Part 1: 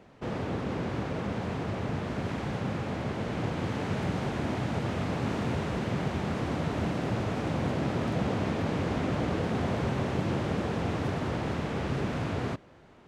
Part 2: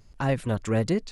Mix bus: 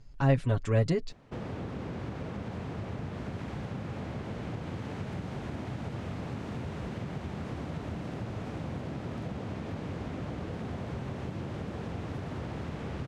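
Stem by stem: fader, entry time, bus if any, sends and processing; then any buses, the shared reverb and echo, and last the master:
-4.0 dB, 1.10 s, no send, compression, threshold -32 dBFS, peak gain reduction 8.5 dB
-5.0 dB, 0.00 s, no send, low-pass 6.6 kHz 12 dB/octave; comb 7.2 ms, depth 63%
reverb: none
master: bass shelf 150 Hz +6.5 dB

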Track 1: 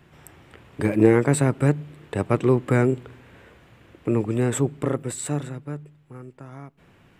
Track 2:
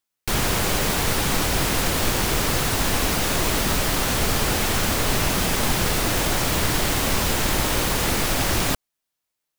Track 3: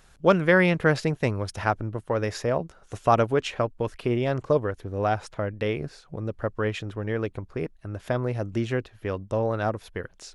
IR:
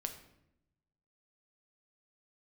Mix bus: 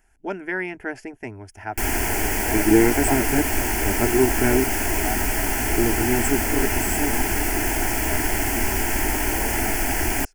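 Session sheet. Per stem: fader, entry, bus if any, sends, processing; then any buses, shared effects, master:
+2.5 dB, 1.70 s, no send, none
+1.5 dB, 1.50 s, no send, none
-4.5 dB, 0.00 s, no send, none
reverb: none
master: static phaser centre 780 Hz, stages 8

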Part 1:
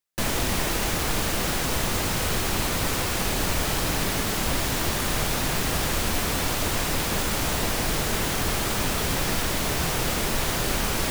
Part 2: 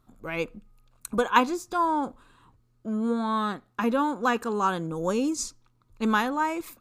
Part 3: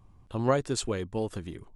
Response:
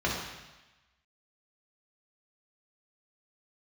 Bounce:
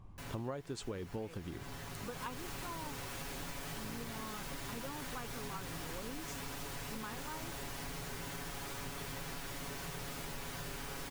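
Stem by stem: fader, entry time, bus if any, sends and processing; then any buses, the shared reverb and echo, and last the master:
-18.5 dB, 0.00 s, send -16.5 dB, band-stop 650 Hz, Q 12; comb 7.2 ms; auto duck -10 dB, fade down 0.25 s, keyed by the third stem
-17.5 dB, 0.90 s, no send, none
+2.5 dB, 0.00 s, no send, treble shelf 5.8 kHz -9.5 dB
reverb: on, RT60 1.1 s, pre-delay 3 ms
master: compression 6:1, threshold -39 dBFS, peak gain reduction 21 dB

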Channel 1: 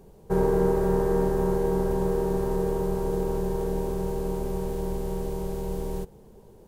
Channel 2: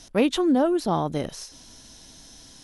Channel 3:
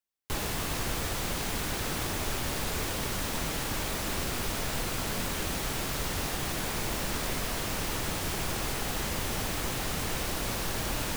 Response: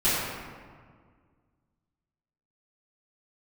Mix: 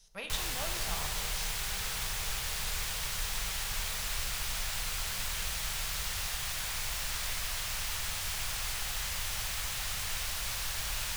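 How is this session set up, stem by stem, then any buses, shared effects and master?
-12.5 dB, 0.00 s, send -15.5 dB, none
-7.5 dB, 0.00 s, send -18 dB, gate -40 dBFS, range -7 dB
+2.5 dB, 0.00 s, no send, treble shelf 7.7 kHz -4 dB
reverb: on, RT60 1.8 s, pre-delay 3 ms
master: amplifier tone stack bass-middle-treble 10-0-10

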